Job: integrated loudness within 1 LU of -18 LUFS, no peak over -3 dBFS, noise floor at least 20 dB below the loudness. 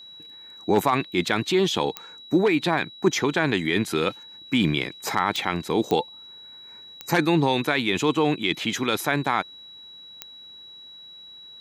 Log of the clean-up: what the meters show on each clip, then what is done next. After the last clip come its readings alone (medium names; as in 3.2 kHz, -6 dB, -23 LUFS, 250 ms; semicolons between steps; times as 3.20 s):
clicks found 5; steady tone 3.9 kHz; tone level -42 dBFS; loudness -23.5 LUFS; peak level -6.5 dBFS; loudness target -18.0 LUFS
-> de-click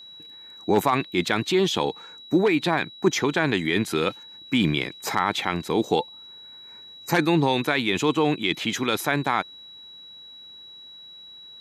clicks found 0; steady tone 3.9 kHz; tone level -42 dBFS
-> band-stop 3.9 kHz, Q 30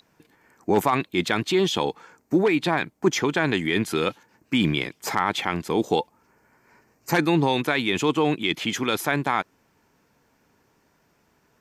steady tone not found; loudness -23.5 LUFS; peak level -7.0 dBFS; loudness target -18.0 LUFS
-> trim +5.5 dB; peak limiter -3 dBFS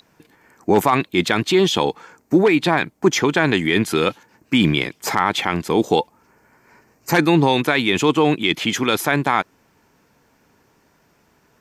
loudness -18.5 LUFS; peak level -3.0 dBFS; noise floor -60 dBFS